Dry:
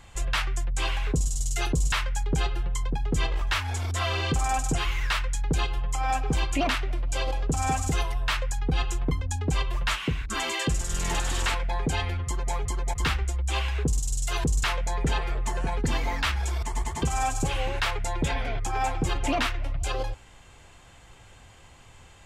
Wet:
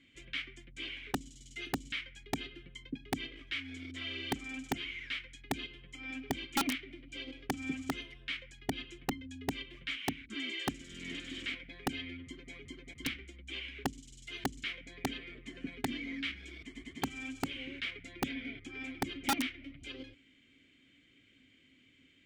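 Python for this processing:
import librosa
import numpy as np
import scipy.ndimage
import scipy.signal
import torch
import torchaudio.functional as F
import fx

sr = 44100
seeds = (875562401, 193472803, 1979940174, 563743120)

y = fx.vowel_filter(x, sr, vowel='i')
y = (np.mod(10.0 ** (27.0 / 20.0) * y + 1.0, 2.0) - 1.0) / 10.0 ** (27.0 / 20.0)
y = y * 10.0 ** (3.0 / 20.0)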